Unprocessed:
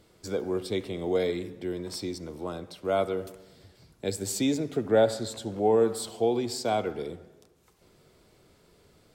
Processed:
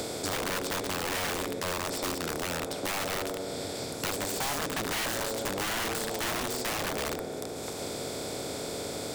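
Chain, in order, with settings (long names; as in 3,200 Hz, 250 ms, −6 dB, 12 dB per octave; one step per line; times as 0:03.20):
compressor on every frequency bin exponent 0.4
wrap-around overflow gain 18.5 dB
multiband upward and downward compressor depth 70%
level −7.5 dB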